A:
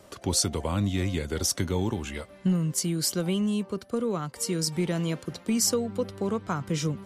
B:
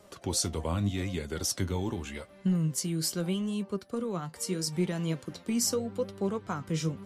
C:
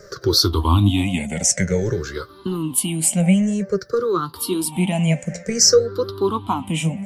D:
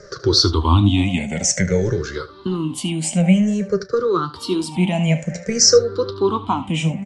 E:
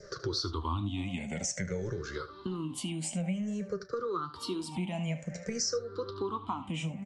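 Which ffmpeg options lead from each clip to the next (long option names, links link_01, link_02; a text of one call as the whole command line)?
ffmpeg -i in.wav -af "flanger=delay=4.8:depth=7.8:regen=61:speed=0.81:shape=sinusoidal" out.wav
ffmpeg -i in.wav -af "afftfilt=real='re*pow(10,23/40*sin(2*PI*(0.56*log(max(b,1)*sr/1024/100)/log(2)-(-0.53)*(pts-256)/sr)))':imag='im*pow(10,23/40*sin(2*PI*(0.56*log(max(b,1)*sr/1024/100)/log(2)-(-0.53)*(pts-256)/sr)))':win_size=1024:overlap=0.75,volume=7.5dB" out.wav
ffmpeg -i in.wav -af "lowpass=frequency=6900:width=0.5412,lowpass=frequency=6900:width=1.3066,aecho=1:1:33|75:0.133|0.158,volume=1.5dB" out.wav
ffmpeg -i in.wav -af "adynamicequalizer=threshold=0.0158:dfrequency=1200:dqfactor=2.7:tfrequency=1200:tqfactor=2.7:attack=5:release=100:ratio=0.375:range=3:mode=boostabove:tftype=bell,acompressor=threshold=-26dB:ratio=3,volume=-8dB" out.wav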